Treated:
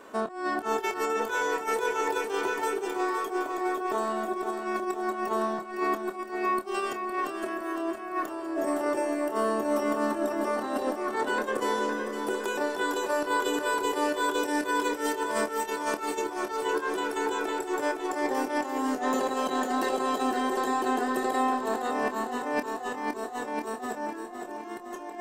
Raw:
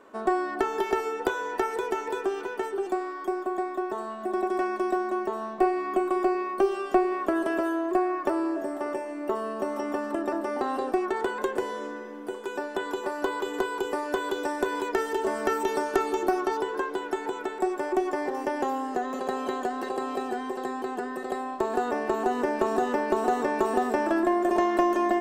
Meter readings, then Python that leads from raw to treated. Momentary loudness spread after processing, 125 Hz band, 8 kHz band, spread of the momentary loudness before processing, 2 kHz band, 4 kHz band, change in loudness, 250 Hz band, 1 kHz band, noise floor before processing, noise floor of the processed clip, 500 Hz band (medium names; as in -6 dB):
6 LU, no reading, +6.5 dB, 7 LU, +2.0 dB, +4.5 dB, -1.0 dB, -2.5 dB, -0.5 dB, -37 dBFS, -39 dBFS, -2.5 dB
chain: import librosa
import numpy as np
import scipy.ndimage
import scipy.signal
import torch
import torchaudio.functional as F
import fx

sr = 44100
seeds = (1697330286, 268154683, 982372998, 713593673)

y = fx.high_shelf(x, sr, hz=3300.0, db=8.0)
y = fx.over_compress(y, sr, threshold_db=-31.0, ratio=-0.5)
y = fx.doubler(y, sr, ms=27.0, db=-10)
y = fx.echo_feedback(y, sr, ms=511, feedback_pct=56, wet_db=-8.0)